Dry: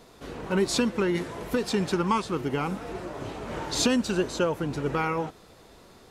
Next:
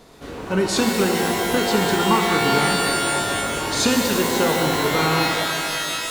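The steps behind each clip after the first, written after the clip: shimmer reverb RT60 2.8 s, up +12 st, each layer -2 dB, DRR 0.5 dB; gain +3.5 dB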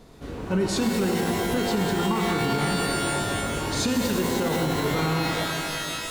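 low shelf 270 Hz +10.5 dB; limiter -9 dBFS, peak gain reduction 7 dB; gain -6 dB

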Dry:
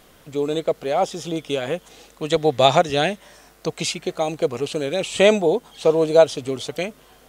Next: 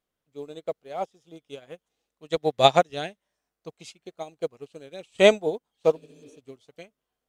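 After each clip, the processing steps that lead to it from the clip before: spectral repair 5.99–6.35, 250–5500 Hz after; upward expander 2.5:1, over -33 dBFS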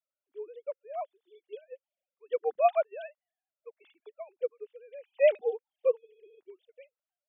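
sine-wave speech; gain -6 dB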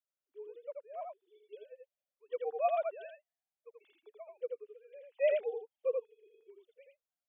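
echo 83 ms -3.5 dB; gain -7.5 dB

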